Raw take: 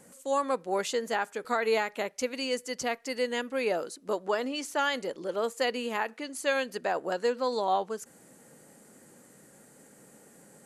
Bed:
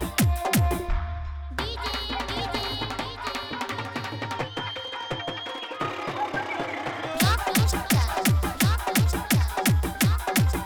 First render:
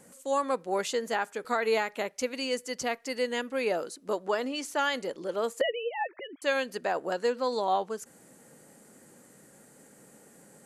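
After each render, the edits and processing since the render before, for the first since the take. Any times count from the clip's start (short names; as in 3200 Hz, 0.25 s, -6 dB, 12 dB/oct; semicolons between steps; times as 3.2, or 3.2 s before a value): 5.61–6.42 sine-wave speech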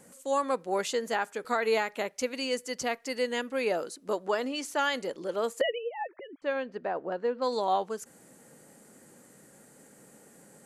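5.78–7.42 tape spacing loss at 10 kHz 36 dB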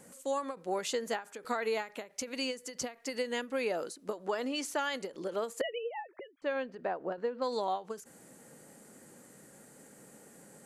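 compressor, threshold -29 dBFS, peak gain reduction 8 dB; ending taper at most 210 dB/s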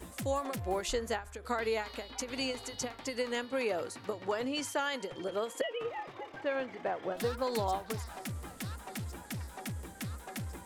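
add bed -18.5 dB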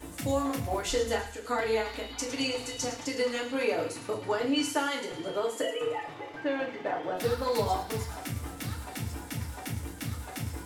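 thin delay 0.109 s, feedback 57%, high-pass 2200 Hz, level -10.5 dB; FDN reverb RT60 0.4 s, low-frequency decay 1.2×, high-frequency decay 0.95×, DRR -2 dB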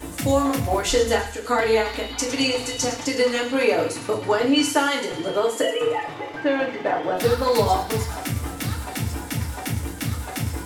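gain +9 dB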